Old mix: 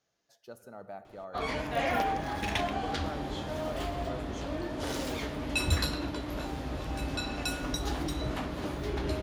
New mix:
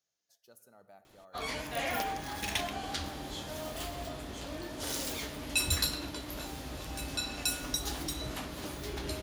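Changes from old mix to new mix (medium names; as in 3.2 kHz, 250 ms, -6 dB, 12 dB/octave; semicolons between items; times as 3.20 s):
background +7.5 dB; master: add pre-emphasis filter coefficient 0.8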